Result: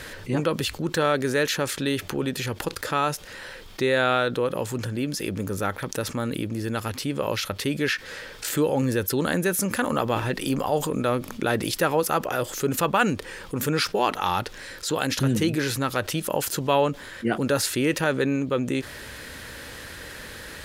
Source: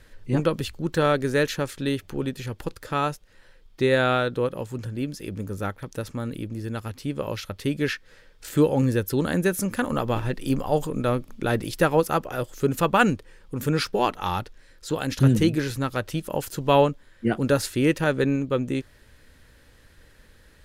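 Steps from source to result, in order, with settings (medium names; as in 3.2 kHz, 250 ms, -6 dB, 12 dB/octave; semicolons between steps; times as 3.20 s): high-pass 110 Hz 6 dB/octave; bass shelf 420 Hz -5 dB; level flattener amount 50%; trim -2 dB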